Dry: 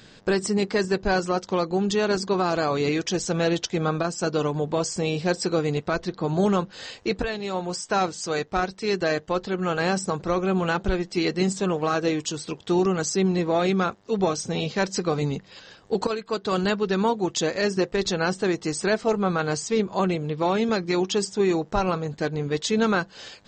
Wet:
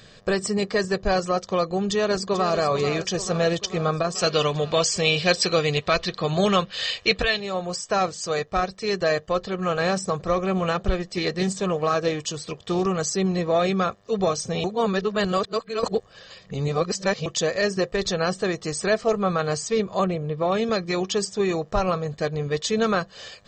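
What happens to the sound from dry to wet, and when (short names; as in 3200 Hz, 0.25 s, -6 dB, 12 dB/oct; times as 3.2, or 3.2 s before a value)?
1.89–2.58 echo throw 0.44 s, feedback 65%, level -10 dB
4.15–7.4 bell 3100 Hz +13 dB 1.8 oct
9.48–12.98 Doppler distortion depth 0.12 ms
14.64–17.26 reverse
20.04–20.52 high shelf 2500 Hz -11 dB
whole clip: comb 1.7 ms, depth 51%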